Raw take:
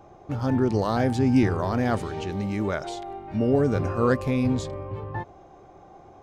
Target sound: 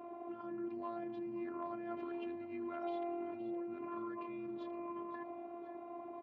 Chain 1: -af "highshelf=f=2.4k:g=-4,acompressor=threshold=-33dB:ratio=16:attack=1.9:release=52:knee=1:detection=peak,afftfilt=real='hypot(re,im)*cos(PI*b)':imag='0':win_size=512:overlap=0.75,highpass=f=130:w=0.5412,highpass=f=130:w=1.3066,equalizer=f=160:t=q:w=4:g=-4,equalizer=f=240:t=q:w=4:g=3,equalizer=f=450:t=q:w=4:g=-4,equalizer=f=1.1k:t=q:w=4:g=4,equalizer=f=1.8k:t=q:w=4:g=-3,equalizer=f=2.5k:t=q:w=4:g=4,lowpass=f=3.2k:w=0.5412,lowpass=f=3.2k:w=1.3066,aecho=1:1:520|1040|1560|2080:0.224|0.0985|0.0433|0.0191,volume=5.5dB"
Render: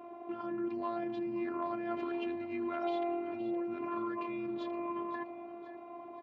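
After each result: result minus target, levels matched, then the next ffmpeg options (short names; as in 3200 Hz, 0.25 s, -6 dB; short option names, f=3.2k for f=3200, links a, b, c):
compressor: peak gain reduction -6 dB; 4000 Hz band +4.5 dB
-af "highshelf=f=2.4k:g=-4,acompressor=threshold=-39.5dB:ratio=16:attack=1.9:release=52:knee=1:detection=peak,afftfilt=real='hypot(re,im)*cos(PI*b)':imag='0':win_size=512:overlap=0.75,highpass=f=130:w=0.5412,highpass=f=130:w=1.3066,equalizer=f=160:t=q:w=4:g=-4,equalizer=f=240:t=q:w=4:g=3,equalizer=f=450:t=q:w=4:g=-4,equalizer=f=1.1k:t=q:w=4:g=4,equalizer=f=1.8k:t=q:w=4:g=-3,equalizer=f=2.5k:t=q:w=4:g=4,lowpass=f=3.2k:w=0.5412,lowpass=f=3.2k:w=1.3066,aecho=1:1:520|1040|1560|2080:0.224|0.0985|0.0433|0.0191,volume=5.5dB"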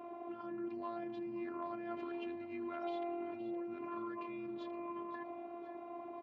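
4000 Hz band +4.5 dB
-af "highshelf=f=2.4k:g=-12,acompressor=threshold=-39.5dB:ratio=16:attack=1.9:release=52:knee=1:detection=peak,afftfilt=real='hypot(re,im)*cos(PI*b)':imag='0':win_size=512:overlap=0.75,highpass=f=130:w=0.5412,highpass=f=130:w=1.3066,equalizer=f=160:t=q:w=4:g=-4,equalizer=f=240:t=q:w=4:g=3,equalizer=f=450:t=q:w=4:g=-4,equalizer=f=1.1k:t=q:w=4:g=4,equalizer=f=1.8k:t=q:w=4:g=-3,equalizer=f=2.5k:t=q:w=4:g=4,lowpass=f=3.2k:w=0.5412,lowpass=f=3.2k:w=1.3066,aecho=1:1:520|1040|1560|2080:0.224|0.0985|0.0433|0.0191,volume=5.5dB"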